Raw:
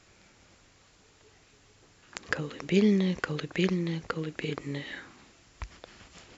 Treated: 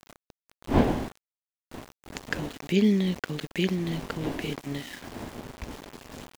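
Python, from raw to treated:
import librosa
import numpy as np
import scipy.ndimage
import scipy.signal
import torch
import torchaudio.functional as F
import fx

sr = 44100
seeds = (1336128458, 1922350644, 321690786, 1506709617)

y = fx.dmg_wind(x, sr, seeds[0], corner_hz=560.0, level_db=-35.0)
y = fx.graphic_eq_31(y, sr, hz=(250, 500, 1250, 3150), db=(7, -4, -7, 4))
y = np.where(np.abs(y) >= 10.0 ** (-38.0 / 20.0), y, 0.0)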